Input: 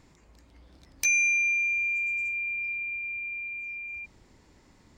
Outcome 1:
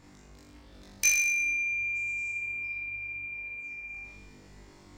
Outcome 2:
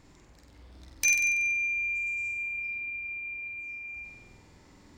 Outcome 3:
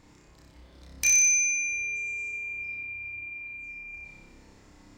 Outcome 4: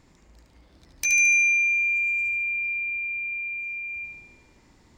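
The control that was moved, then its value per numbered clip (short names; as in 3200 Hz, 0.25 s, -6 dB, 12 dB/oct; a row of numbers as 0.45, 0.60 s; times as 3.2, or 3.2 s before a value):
flutter echo, walls apart: 3.5, 8.1, 5.2, 12.5 m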